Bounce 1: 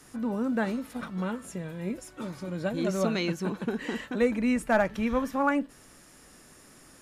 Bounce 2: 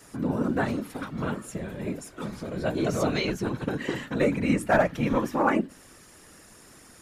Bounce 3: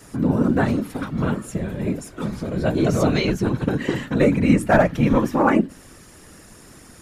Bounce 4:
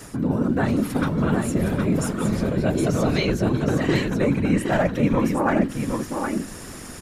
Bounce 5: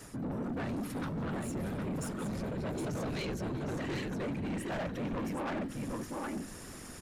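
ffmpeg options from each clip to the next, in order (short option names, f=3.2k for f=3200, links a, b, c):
-af "bandreject=f=60:t=h:w=6,bandreject=f=120:t=h:w=6,bandreject=f=180:t=h:w=6,bandreject=f=240:t=h:w=6,afftfilt=real='hypot(re,im)*cos(2*PI*random(0))':imag='hypot(re,im)*sin(2*PI*random(1))':win_size=512:overlap=0.75,volume=8.5dB"
-af "lowshelf=f=290:g=7,volume=4dB"
-af "areverse,acompressor=threshold=-26dB:ratio=5,areverse,aecho=1:1:765:0.562,volume=7dB"
-af "asoftclip=type=tanh:threshold=-23.5dB,volume=-9dB"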